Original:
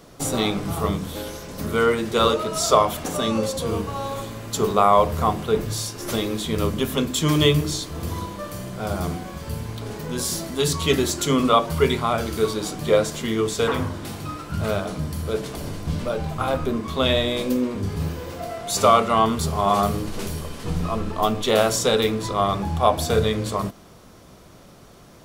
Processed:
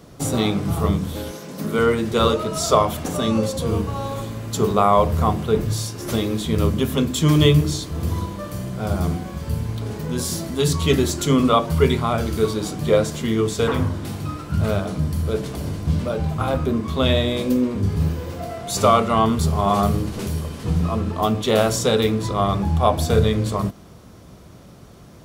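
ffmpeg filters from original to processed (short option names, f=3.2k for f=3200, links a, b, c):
-filter_complex "[0:a]asettb=1/sr,asplit=3[a][b][c];[a]atrim=end=1.314[d];[b]atrim=start=1.31:end=1.79,asetpts=PTS-STARTPTS,afade=t=in:d=0.004:c=qsin,afade=t=out:st=0.476:d=0.004:c=qsin,highpass=f=150:w=0.5412,highpass=f=150:w=1.3066[e];[c]atrim=start=1.786[f];[d][e]acrossfade=d=0.004:c1=hsin:c2=qsin[g];[g][f]acrossfade=d=0.004:c1=qsin:c2=hsin,highpass=48,lowshelf=f=250:g=9,volume=-1dB"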